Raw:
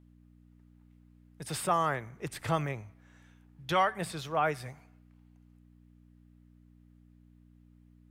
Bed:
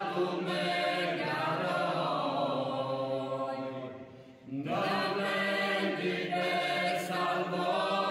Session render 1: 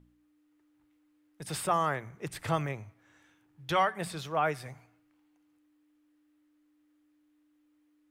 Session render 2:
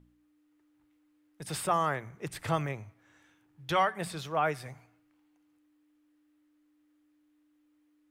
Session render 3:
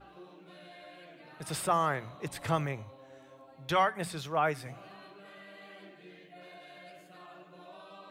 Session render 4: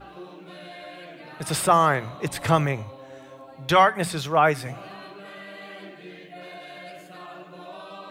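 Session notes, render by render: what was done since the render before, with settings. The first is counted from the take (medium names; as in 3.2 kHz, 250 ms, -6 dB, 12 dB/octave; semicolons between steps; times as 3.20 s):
de-hum 60 Hz, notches 4
no audible change
add bed -20.5 dB
trim +10 dB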